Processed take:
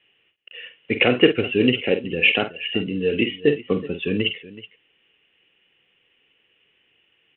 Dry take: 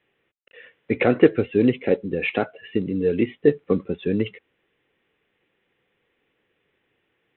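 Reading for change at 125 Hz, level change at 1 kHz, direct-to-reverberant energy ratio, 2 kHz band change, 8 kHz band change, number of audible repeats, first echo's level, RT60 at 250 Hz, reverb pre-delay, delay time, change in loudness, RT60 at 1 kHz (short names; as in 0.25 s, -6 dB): -0.5 dB, 0.0 dB, none, +8.0 dB, n/a, 2, -9.0 dB, none, none, 48 ms, +1.5 dB, none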